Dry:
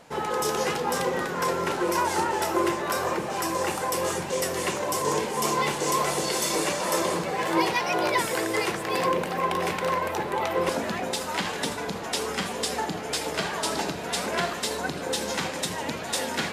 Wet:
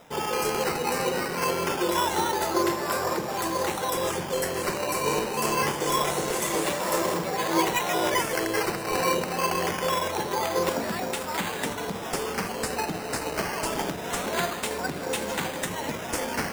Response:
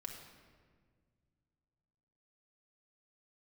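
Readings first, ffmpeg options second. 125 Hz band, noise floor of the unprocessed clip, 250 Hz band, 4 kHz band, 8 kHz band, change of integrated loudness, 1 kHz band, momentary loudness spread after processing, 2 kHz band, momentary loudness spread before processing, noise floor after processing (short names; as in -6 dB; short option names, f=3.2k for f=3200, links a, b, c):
+0.5 dB, -34 dBFS, 0.0 dB, -1.0 dB, -0.5 dB, -0.5 dB, -0.5 dB, 5 LU, -0.5 dB, 5 LU, -34 dBFS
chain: -filter_complex "[0:a]acrossover=split=5500[a][b];[a]acrusher=samples=10:mix=1:aa=0.000001:lfo=1:lforange=6:lforate=0.25[c];[b]aeval=exprs='sgn(val(0))*max(abs(val(0))-0.00398,0)':c=same[d];[c][d]amix=inputs=2:normalize=0"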